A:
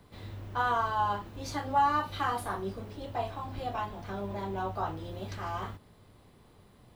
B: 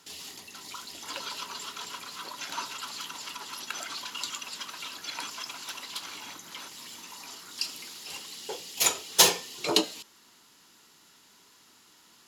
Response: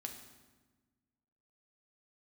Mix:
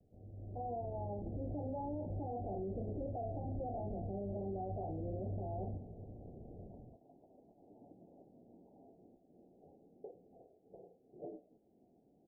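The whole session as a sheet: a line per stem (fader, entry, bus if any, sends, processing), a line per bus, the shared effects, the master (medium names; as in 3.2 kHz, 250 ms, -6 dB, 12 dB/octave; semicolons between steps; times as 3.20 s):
0.74 s -12.5 dB -> 1.46 s -5 dB, 0.00 s, send -16 dB, level rider gain up to 11.5 dB
-4.0 dB, 1.55 s, no send, compression 16:1, threshold -39 dBFS, peak gain reduction 26.5 dB; modulation noise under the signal 15 dB; gain riding within 4 dB 0.5 s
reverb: on, RT60 1.3 s, pre-delay 4 ms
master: steep low-pass 750 Hz 96 dB/octave; peak limiter -34 dBFS, peak gain reduction 18.5 dB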